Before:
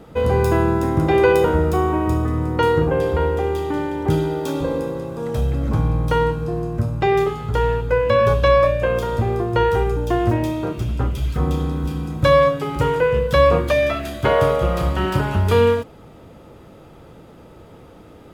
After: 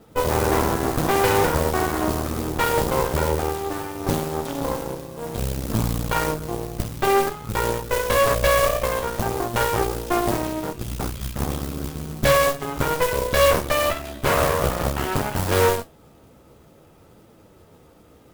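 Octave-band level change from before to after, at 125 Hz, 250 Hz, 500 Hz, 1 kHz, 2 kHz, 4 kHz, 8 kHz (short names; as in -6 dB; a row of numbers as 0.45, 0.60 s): -6.5 dB, -4.5 dB, -4.5 dB, -1.0 dB, 0.0 dB, +2.5 dB, n/a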